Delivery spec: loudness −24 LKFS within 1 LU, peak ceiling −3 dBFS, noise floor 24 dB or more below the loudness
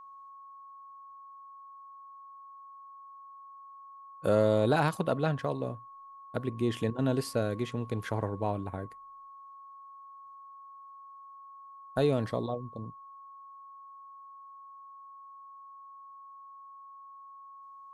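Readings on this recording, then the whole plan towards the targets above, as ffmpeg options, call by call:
interfering tone 1,100 Hz; level of the tone −47 dBFS; integrated loudness −31.0 LKFS; sample peak −13.5 dBFS; target loudness −24.0 LKFS
→ -af "bandreject=frequency=1100:width=30"
-af "volume=7dB"

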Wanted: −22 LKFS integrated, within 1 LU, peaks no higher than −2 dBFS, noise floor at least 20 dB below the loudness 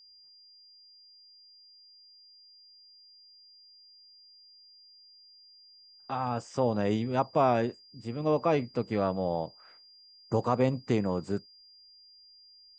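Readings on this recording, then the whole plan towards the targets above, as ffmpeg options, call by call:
interfering tone 4,800 Hz; level of the tone −54 dBFS; integrated loudness −30.0 LKFS; sample peak −12.5 dBFS; target loudness −22.0 LKFS
→ -af "bandreject=frequency=4800:width=30"
-af "volume=8dB"

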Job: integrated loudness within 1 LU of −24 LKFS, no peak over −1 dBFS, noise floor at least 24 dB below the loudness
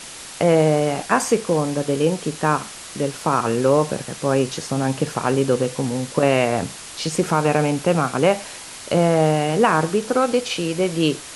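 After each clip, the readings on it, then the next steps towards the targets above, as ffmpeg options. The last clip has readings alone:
background noise floor −37 dBFS; target noise floor −45 dBFS; integrated loudness −20.5 LKFS; sample peak −2.5 dBFS; target loudness −24.0 LKFS
→ -af "afftdn=noise_reduction=8:noise_floor=-37"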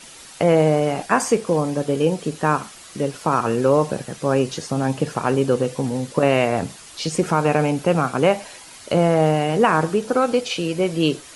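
background noise floor −42 dBFS; target noise floor −45 dBFS
→ -af "afftdn=noise_reduction=6:noise_floor=-42"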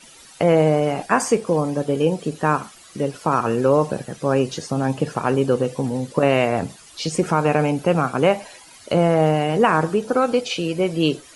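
background noise floor −46 dBFS; integrated loudness −20.5 LKFS; sample peak −2.5 dBFS; target loudness −24.0 LKFS
→ -af "volume=-3.5dB"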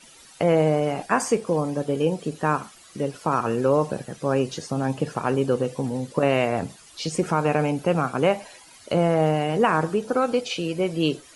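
integrated loudness −24.0 LKFS; sample peak −6.0 dBFS; background noise floor −50 dBFS

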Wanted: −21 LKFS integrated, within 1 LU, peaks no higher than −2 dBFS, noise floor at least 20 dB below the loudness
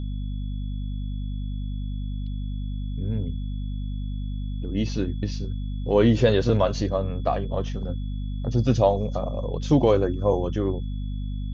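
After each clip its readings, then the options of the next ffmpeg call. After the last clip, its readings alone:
mains hum 50 Hz; hum harmonics up to 250 Hz; level of the hum −27 dBFS; interfering tone 3,400 Hz; level of the tone −53 dBFS; integrated loudness −26.0 LKFS; sample peak −6.0 dBFS; target loudness −21.0 LKFS
→ -af "bandreject=frequency=50:width_type=h:width=4,bandreject=frequency=100:width_type=h:width=4,bandreject=frequency=150:width_type=h:width=4,bandreject=frequency=200:width_type=h:width=4,bandreject=frequency=250:width_type=h:width=4"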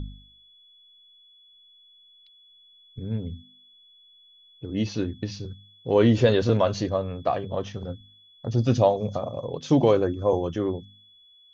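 mains hum none found; interfering tone 3,400 Hz; level of the tone −53 dBFS
→ -af "bandreject=frequency=3400:width=30"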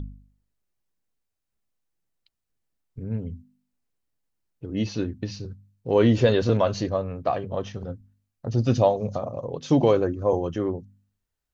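interfering tone none found; integrated loudness −24.5 LKFS; sample peak −6.5 dBFS; target loudness −21.0 LKFS
→ -af "volume=3.5dB"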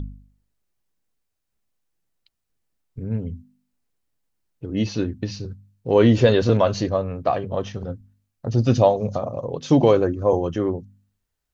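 integrated loudness −21.0 LKFS; sample peak −3.0 dBFS; background noise floor −78 dBFS

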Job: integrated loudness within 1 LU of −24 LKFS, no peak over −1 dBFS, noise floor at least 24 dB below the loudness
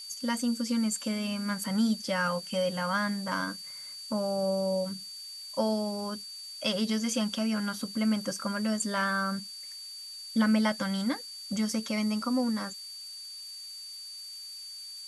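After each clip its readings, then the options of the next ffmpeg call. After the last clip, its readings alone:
interfering tone 4,600 Hz; level of the tone −41 dBFS; background noise floor −43 dBFS; target noise floor −55 dBFS; integrated loudness −31.0 LKFS; sample peak −15.5 dBFS; target loudness −24.0 LKFS
→ -af "bandreject=frequency=4600:width=30"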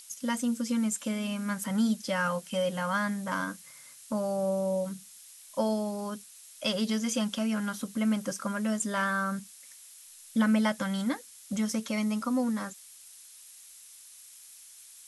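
interfering tone none found; background noise floor −52 dBFS; target noise floor −55 dBFS
→ -af "afftdn=noise_reduction=6:noise_floor=-52"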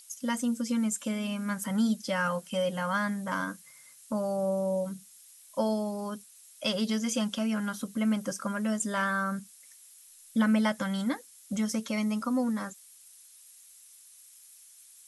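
background noise floor −55 dBFS; integrated loudness −30.5 LKFS; sample peak −16.0 dBFS; target loudness −24.0 LKFS
→ -af "volume=6.5dB"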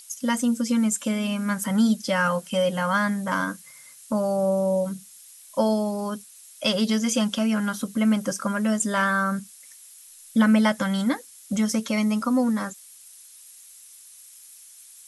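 integrated loudness −24.0 LKFS; sample peak −9.5 dBFS; background noise floor −48 dBFS

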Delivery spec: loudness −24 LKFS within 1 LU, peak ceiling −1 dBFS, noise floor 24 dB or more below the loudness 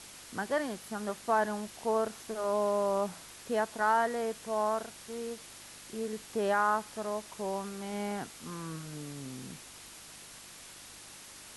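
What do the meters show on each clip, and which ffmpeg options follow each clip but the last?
mains hum 50 Hz; hum harmonics up to 350 Hz; level of the hum −65 dBFS; background noise floor −50 dBFS; target noise floor −58 dBFS; integrated loudness −33.5 LKFS; sample peak −16.0 dBFS; target loudness −24.0 LKFS
→ -af "bandreject=frequency=50:width_type=h:width=4,bandreject=frequency=100:width_type=h:width=4,bandreject=frequency=150:width_type=h:width=4,bandreject=frequency=200:width_type=h:width=4,bandreject=frequency=250:width_type=h:width=4,bandreject=frequency=300:width_type=h:width=4,bandreject=frequency=350:width_type=h:width=4"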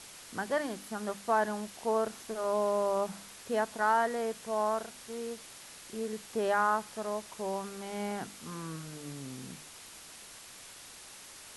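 mains hum none found; background noise floor −50 dBFS; target noise floor −58 dBFS
→ -af "afftdn=noise_reduction=8:noise_floor=-50"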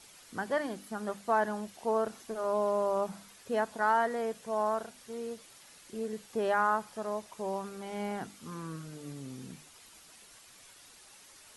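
background noise floor −56 dBFS; target noise floor −58 dBFS
→ -af "afftdn=noise_reduction=6:noise_floor=-56"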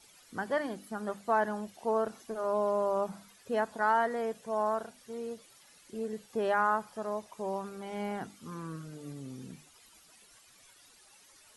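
background noise floor −60 dBFS; integrated loudness −33.5 LKFS; sample peak −16.5 dBFS; target loudness −24.0 LKFS
→ -af "volume=9.5dB"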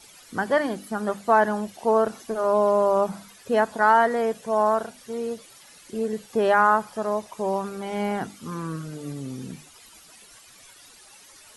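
integrated loudness −24.0 LKFS; sample peak −7.0 dBFS; background noise floor −51 dBFS

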